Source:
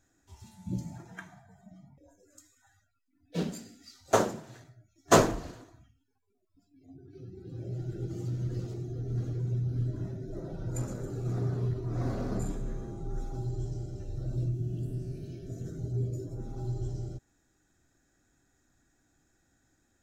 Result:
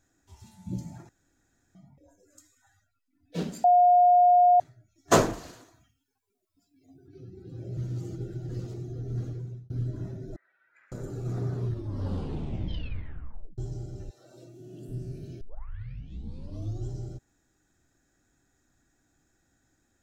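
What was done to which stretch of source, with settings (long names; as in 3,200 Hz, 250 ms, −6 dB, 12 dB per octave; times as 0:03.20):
0:01.09–0:01.75: fill with room tone
0:03.64–0:04.60: beep over 714 Hz −15 dBFS
0:05.33–0:07.08: spectral tilt +2 dB per octave
0:07.77–0:08.49: reverse
0:09.23–0:09.70: fade out
0:10.36–0:10.92: flat-topped band-pass 1,900 Hz, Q 2.7
0:11.62: tape stop 1.96 s
0:14.09–0:14.88: high-pass filter 930 Hz → 230 Hz
0:15.41: tape start 1.47 s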